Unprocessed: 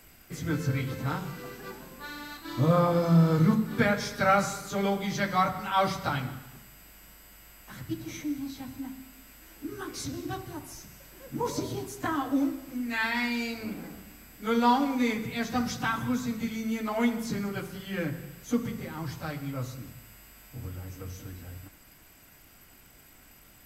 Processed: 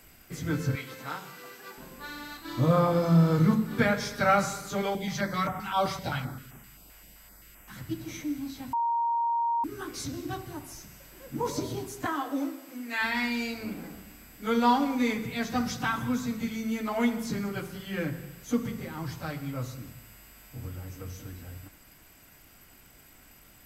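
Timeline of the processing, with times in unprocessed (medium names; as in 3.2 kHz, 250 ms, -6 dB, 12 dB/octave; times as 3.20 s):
0.75–1.78 s: high-pass 820 Hz 6 dB/octave
4.82–7.76 s: step-sequenced notch 7.7 Hz 230–4300 Hz
8.73–9.64 s: bleep 934 Hz -24 dBFS
12.06–13.01 s: high-pass 330 Hz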